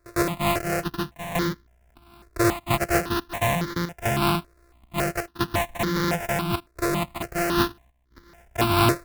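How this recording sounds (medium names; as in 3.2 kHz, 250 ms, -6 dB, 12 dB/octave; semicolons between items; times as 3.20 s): a buzz of ramps at a fixed pitch in blocks of 128 samples; chopped level 0.74 Hz, depth 65%, duty 85%; aliases and images of a low sample rate 3.2 kHz, jitter 20%; notches that jump at a steady rate 3.6 Hz 830–2600 Hz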